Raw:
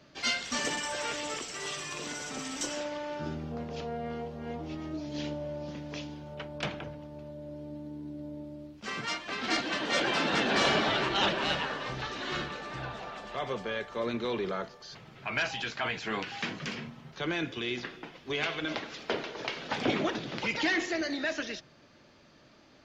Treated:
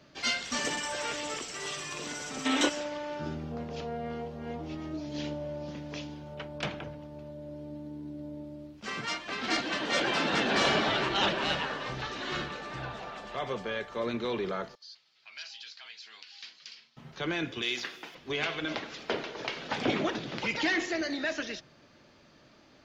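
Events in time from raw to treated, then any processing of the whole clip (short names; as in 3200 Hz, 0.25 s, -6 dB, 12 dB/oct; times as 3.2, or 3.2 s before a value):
2.46–2.69 spectral gain 220–4200 Hz +12 dB
14.75–16.97 band-pass 4600 Hz, Q 3.2
17.62–18.15 RIAA curve recording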